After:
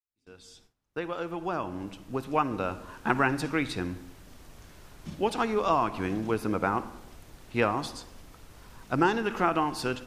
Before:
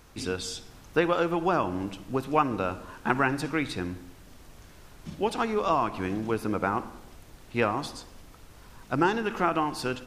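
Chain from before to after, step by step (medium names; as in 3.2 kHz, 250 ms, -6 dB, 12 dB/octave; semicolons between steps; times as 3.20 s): fade-in on the opening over 3.23 s; gate with hold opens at -44 dBFS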